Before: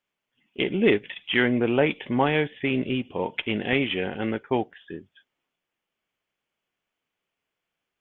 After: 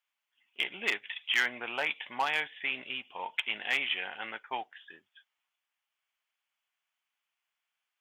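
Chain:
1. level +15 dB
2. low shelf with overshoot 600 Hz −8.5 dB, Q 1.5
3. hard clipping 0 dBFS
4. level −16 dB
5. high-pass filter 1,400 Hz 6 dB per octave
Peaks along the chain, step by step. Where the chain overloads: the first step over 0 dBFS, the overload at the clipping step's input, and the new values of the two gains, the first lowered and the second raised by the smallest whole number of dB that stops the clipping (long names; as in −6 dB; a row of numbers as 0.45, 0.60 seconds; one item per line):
+8.5, +6.5, 0.0, −16.0, −14.0 dBFS
step 1, 6.5 dB
step 1 +8 dB, step 4 −9 dB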